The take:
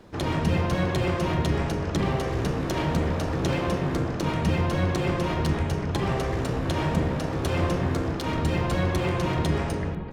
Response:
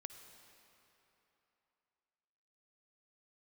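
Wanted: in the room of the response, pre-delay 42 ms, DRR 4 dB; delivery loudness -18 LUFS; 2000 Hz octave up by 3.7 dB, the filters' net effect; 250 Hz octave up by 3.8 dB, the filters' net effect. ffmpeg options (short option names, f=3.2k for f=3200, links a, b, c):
-filter_complex "[0:a]equalizer=f=250:t=o:g=5.5,equalizer=f=2k:t=o:g=4.5,asplit=2[a][b];[1:a]atrim=start_sample=2205,adelay=42[c];[b][c]afir=irnorm=-1:irlink=0,volume=0.5dB[d];[a][d]amix=inputs=2:normalize=0,volume=4.5dB"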